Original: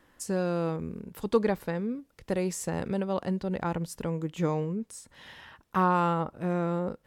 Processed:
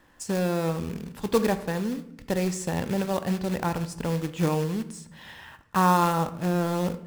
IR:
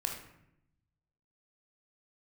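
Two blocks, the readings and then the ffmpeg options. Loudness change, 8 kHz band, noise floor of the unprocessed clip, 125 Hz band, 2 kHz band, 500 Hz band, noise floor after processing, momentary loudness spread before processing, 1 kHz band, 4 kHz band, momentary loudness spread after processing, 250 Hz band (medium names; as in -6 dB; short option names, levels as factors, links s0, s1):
+3.5 dB, +4.0 dB, -67 dBFS, +4.0 dB, +4.5 dB, +2.0 dB, -54 dBFS, 13 LU, +4.0 dB, +8.0 dB, 13 LU, +3.5 dB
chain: -filter_complex "[0:a]lowpass=8600,acrusher=bits=3:mode=log:mix=0:aa=0.000001,asplit=2[s0][s1];[1:a]atrim=start_sample=2205[s2];[s1][s2]afir=irnorm=-1:irlink=0,volume=0.422[s3];[s0][s3]amix=inputs=2:normalize=0"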